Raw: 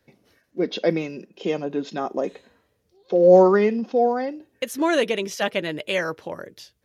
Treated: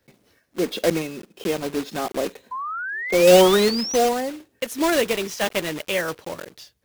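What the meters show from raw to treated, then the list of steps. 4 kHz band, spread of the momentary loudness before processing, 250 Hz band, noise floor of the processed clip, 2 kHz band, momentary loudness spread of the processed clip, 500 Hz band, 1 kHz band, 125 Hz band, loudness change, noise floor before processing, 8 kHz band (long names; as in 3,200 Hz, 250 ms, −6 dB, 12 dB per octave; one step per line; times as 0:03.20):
+7.0 dB, 18 LU, 0.0 dB, −66 dBFS, +3.5 dB, 18 LU, 0.0 dB, +0.5 dB, 0.0 dB, +0.5 dB, −70 dBFS, can't be measured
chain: one scale factor per block 3 bits
sound drawn into the spectrogram rise, 0:02.51–0:03.97, 990–6,200 Hz −29 dBFS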